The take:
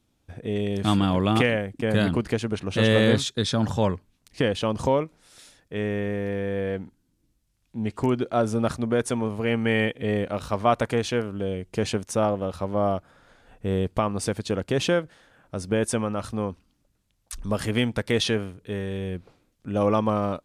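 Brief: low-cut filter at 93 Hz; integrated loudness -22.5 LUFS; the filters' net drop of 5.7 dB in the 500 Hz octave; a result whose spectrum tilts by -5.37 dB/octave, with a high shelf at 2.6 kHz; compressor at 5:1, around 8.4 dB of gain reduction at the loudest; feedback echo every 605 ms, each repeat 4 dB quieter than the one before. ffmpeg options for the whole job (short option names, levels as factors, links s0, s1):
-af "highpass=93,equalizer=f=500:t=o:g=-6.5,highshelf=f=2600:g=-5.5,acompressor=threshold=0.0447:ratio=5,aecho=1:1:605|1210|1815|2420|3025|3630|4235|4840|5445:0.631|0.398|0.25|0.158|0.0994|0.0626|0.0394|0.0249|0.0157,volume=2.82"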